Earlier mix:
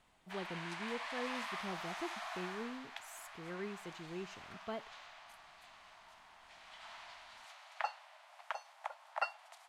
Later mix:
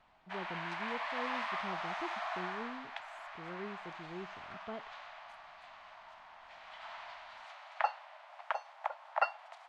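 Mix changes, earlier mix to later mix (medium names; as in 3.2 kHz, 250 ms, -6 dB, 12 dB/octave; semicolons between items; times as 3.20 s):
background +8.5 dB; master: add tape spacing loss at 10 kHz 23 dB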